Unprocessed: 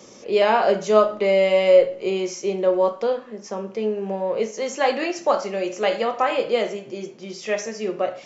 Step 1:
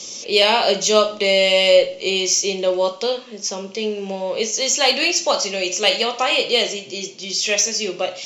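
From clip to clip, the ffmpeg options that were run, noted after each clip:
-af "lowpass=6.5k,aexciter=amount=5.3:drive=8.3:freq=2.5k"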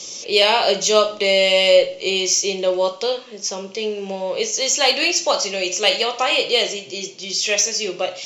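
-af "equalizer=f=230:w=5.2:g=-7.5"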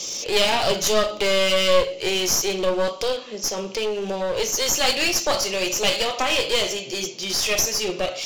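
-filter_complex "[0:a]asplit=2[a][b];[b]acompressor=threshold=-25dB:ratio=6,volume=-0.5dB[c];[a][c]amix=inputs=2:normalize=0,aeval=exprs='clip(val(0),-1,0.075)':c=same,volume=-2.5dB"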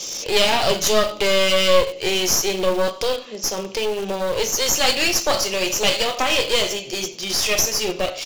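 -filter_complex "[0:a]asplit=2[a][b];[b]acrusher=bits=3:mix=0:aa=0.000001,volume=-10dB[c];[a][c]amix=inputs=2:normalize=0,aecho=1:1:91:0.075"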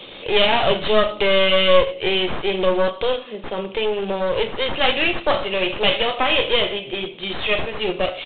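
-af "aresample=8000,aresample=44100,volume=1.5dB"

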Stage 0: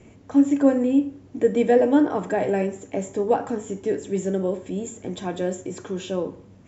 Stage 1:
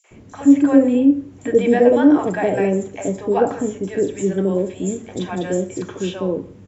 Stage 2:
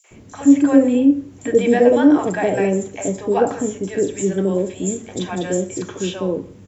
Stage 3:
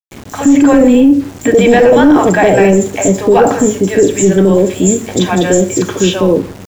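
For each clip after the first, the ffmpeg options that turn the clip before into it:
-filter_complex "[0:a]acrossover=split=680|4900[a][b][c];[b]adelay=40[d];[a]adelay=110[e];[e][d][c]amix=inputs=3:normalize=0,volume=6dB"
-af "highshelf=f=4.2k:g=8"
-af "apsyclip=15dB,aeval=exprs='val(0)*gte(abs(val(0)),0.0501)':c=same,volume=-2dB"

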